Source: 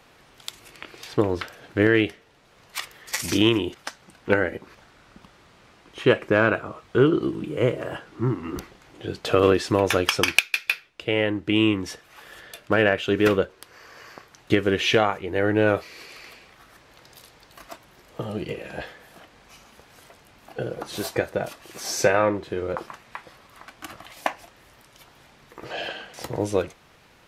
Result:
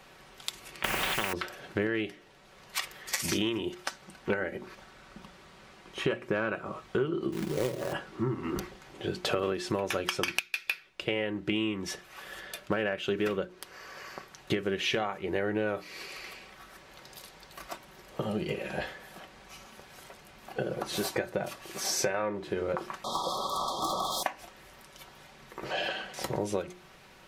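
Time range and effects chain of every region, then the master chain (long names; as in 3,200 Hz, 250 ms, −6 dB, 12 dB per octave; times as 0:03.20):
0:00.84–0:01.33: Chebyshev low-pass filter 2,600 Hz, order 4 + bit-depth reduction 10 bits, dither none + every bin compressed towards the loudest bin 10 to 1
0:07.32–0:07.93: low-pass filter 1,400 Hz + log-companded quantiser 4 bits
0:23.04–0:24.23: mid-hump overdrive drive 32 dB, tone 3,600 Hz, clips at −18 dBFS + linear-phase brick-wall band-stop 1,300–3,200 Hz
whole clip: mains-hum notches 60/120/180/240/300/360 Hz; comb filter 5.3 ms, depth 40%; downward compressor 6 to 1, threshold −27 dBFS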